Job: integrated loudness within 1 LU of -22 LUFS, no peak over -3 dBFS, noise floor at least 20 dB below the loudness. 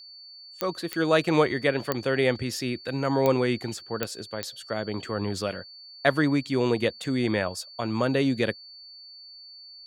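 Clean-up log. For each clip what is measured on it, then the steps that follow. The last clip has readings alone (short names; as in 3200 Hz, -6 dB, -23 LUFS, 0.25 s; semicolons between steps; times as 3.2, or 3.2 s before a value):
clicks 6; steady tone 4500 Hz; tone level -44 dBFS; loudness -26.5 LUFS; peak -6.0 dBFS; loudness target -22.0 LUFS
-> de-click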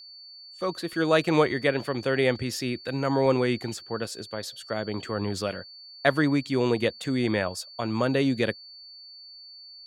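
clicks 0; steady tone 4500 Hz; tone level -44 dBFS
-> notch 4500 Hz, Q 30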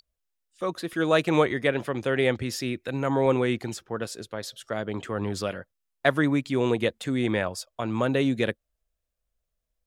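steady tone none; loudness -27.0 LUFS; peak -6.0 dBFS; loudness target -22.0 LUFS
-> gain +5 dB; limiter -3 dBFS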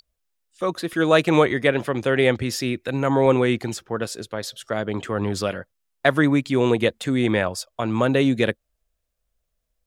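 loudness -22.0 LUFS; peak -3.0 dBFS; noise floor -77 dBFS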